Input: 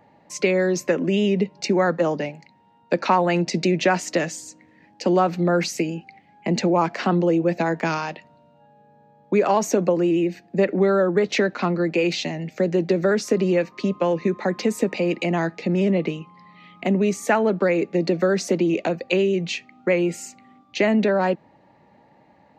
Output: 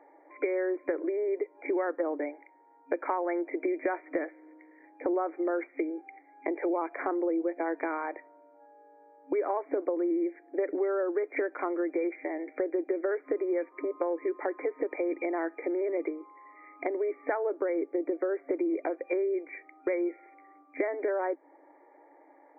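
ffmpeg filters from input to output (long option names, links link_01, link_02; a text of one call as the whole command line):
ffmpeg -i in.wav -filter_complex "[0:a]asettb=1/sr,asplit=3[link_01][link_02][link_03];[link_01]atrim=end=17.374[link_04];[link_02]atrim=start=17.37:end=18.49,asetpts=PTS-STARTPTS,afade=type=in:duration=0.004:curve=qsin,afade=type=out:start_time=1.116:duration=0.004:curve=qsin,lowpass=frequency=1500:poles=1[link_05];[link_03]atrim=start=18.486[link_06];[link_04][link_05]acrossfade=duration=0.004:curve1=hsin:curve2=qsin[link_07];[link_07][link_06]acrossfade=duration=0.004:curve1=qsin:curve2=hsin,afftfilt=real='re*between(b*sr/4096,270,2400)':imag='im*between(b*sr/4096,270,2400)':win_size=4096:overlap=0.75,lowshelf=frequency=490:gain=6.5,acompressor=threshold=-26dB:ratio=3,volume=-3.5dB" out.wav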